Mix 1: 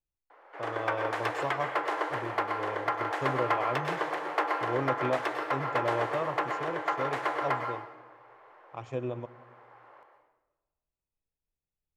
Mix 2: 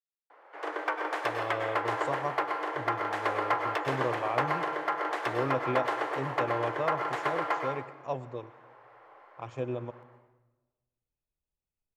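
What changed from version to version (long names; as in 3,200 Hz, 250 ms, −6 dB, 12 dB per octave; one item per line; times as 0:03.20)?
speech: entry +0.65 s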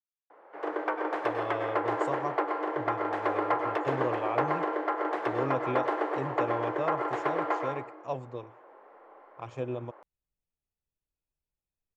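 speech: send off
background: add spectral tilt −4 dB per octave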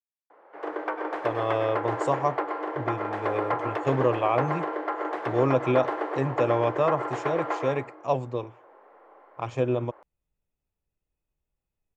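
speech +9.0 dB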